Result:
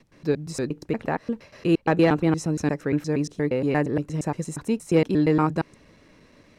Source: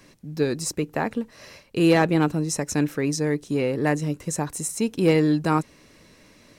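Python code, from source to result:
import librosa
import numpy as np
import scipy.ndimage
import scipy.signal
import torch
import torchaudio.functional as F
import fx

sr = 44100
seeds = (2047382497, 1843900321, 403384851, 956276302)

y = fx.block_reorder(x, sr, ms=117.0, group=2)
y = fx.lowpass(y, sr, hz=2400.0, slope=6)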